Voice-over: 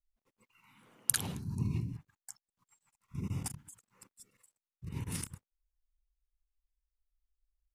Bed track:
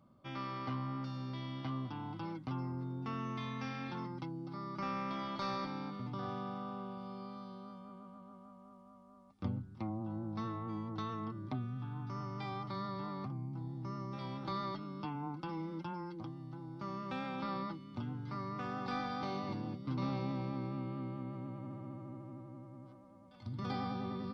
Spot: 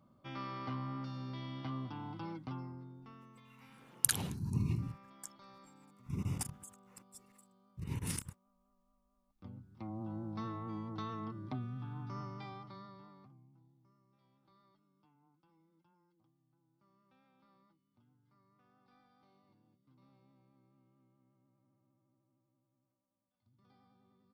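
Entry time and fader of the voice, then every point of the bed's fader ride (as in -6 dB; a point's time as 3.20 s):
2.95 s, 0.0 dB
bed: 2.42 s -1.5 dB
3.37 s -20 dB
9.17 s -20 dB
10.02 s -1.5 dB
12.20 s -1.5 dB
14.02 s -31 dB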